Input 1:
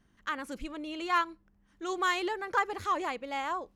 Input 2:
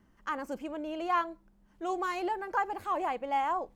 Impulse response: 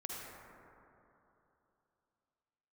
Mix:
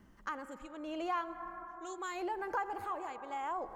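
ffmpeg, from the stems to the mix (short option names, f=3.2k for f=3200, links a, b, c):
-filter_complex "[0:a]equalizer=f=7.2k:t=o:w=0.24:g=14,volume=-13.5dB[a];[1:a]tremolo=f=0.78:d=0.95,volume=2.5dB,asplit=3[b][c][d];[c]volume=-11dB[e];[d]apad=whole_len=165796[f];[a][f]sidechaincompress=threshold=-41dB:ratio=8:attack=16:release=336[g];[2:a]atrim=start_sample=2205[h];[e][h]afir=irnorm=-1:irlink=0[i];[g][b][i]amix=inputs=3:normalize=0,acompressor=threshold=-37dB:ratio=2.5"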